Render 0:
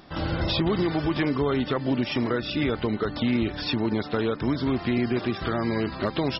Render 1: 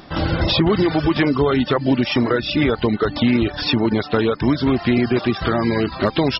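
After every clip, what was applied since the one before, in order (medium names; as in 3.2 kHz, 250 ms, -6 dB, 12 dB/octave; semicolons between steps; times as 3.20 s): reverb removal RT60 0.56 s; trim +8.5 dB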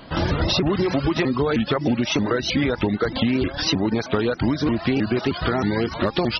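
compression, threshold -17 dBFS, peak gain reduction 5.5 dB; vibrato with a chosen wave saw up 3.2 Hz, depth 250 cents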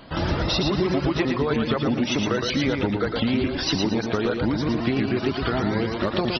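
feedback delay 114 ms, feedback 31%, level -4.5 dB; trim -3 dB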